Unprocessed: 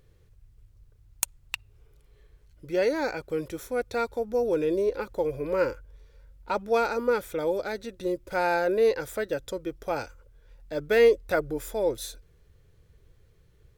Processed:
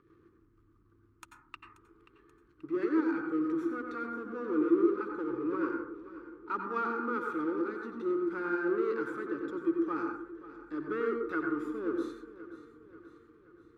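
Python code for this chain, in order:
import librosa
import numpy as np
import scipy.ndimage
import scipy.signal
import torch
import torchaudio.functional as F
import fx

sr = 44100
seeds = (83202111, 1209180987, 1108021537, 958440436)

y = fx.rotary_switch(x, sr, hz=6.3, then_hz=1.2, switch_at_s=6.17)
y = fx.power_curve(y, sr, exponent=0.7)
y = fx.double_bandpass(y, sr, hz=630.0, octaves=1.9)
y = fx.echo_feedback(y, sr, ms=532, feedback_pct=54, wet_db=-16.0)
y = fx.rev_plate(y, sr, seeds[0], rt60_s=0.51, hf_ratio=0.25, predelay_ms=80, drr_db=2.5)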